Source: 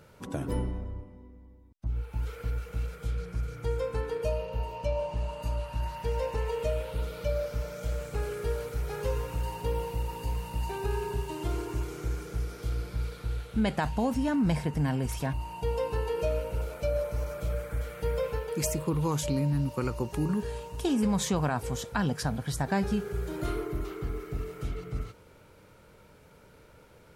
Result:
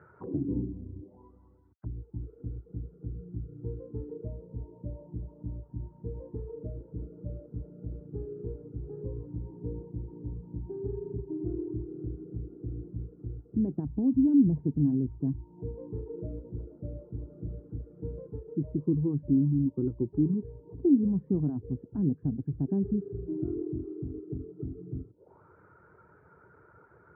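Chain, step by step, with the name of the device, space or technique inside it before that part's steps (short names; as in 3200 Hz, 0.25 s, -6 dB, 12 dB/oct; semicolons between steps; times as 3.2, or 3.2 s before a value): reverb removal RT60 0.52 s; tilt shelf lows +4 dB, about 1200 Hz; envelope filter bass rig (envelope low-pass 270–1800 Hz down, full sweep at -32 dBFS; speaker cabinet 71–2000 Hz, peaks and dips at 230 Hz -8 dB, 370 Hz +6 dB, 550 Hz -6 dB); gain -5 dB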